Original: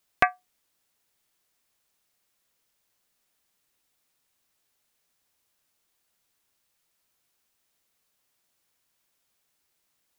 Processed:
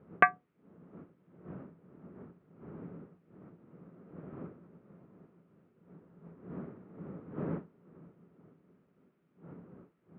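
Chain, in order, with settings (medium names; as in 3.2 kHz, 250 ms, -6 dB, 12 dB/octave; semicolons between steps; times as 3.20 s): wind noise 280 Hz -46 dBFS; cabinet simulation 160–2400 Hz, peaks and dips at 170 Hz +9 dB, 410 Hz +4 dB, 780 Hz -3 dB, 1.3 kHz +7 dB; trim -2.5 dB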